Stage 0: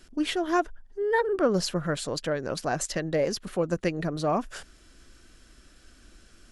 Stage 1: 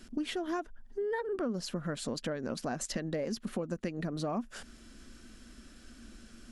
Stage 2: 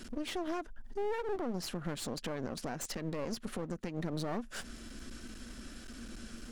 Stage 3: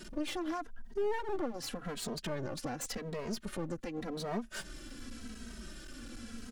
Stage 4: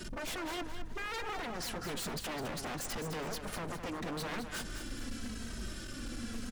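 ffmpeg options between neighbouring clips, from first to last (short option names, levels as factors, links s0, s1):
-af "equalizer=f=230:w=3.9:g=13.5,acompressor=threshold=0.0251:ratio=6"
-af "alimiter=level_in=2.66:limit=0.0631:level=0:latency=1:release=252,volume=0.376,aeval=exprs='clip(val(0),-1,0.00299)':c=same,volume=2.11"
-filter_complex "[0:a]asplit=2[s0][s1];[s1]adelay=2.8,afreqshift=-0.88[s2];[s0][s2]amix=inputs=2:normalize=1,volume=1.5"
-af "aeval=exprs='val(0)+0.002*(sin(2*PI*50*n/s)+sin(2*PI*2*50*n/s)/2+sin(2*PI*3*50*n/s)/3+sin(2*PI*4*50*n/s)/4+sin(2*PI*5*50*n/s)/5)':c=same,aeval=exprs='0.0119*(abs(mod(val(0)/0.0119+3,4)-2)-1)':c=same,aecho=1:1:209|418|627|836:0.376|0.12|0.0385|0.0123,volume=1.68"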